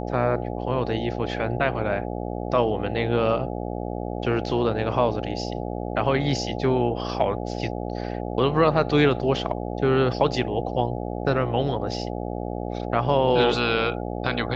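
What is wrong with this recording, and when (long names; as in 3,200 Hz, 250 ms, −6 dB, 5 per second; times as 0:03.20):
mains buzz 60 Hz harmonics 14 −30 dBFS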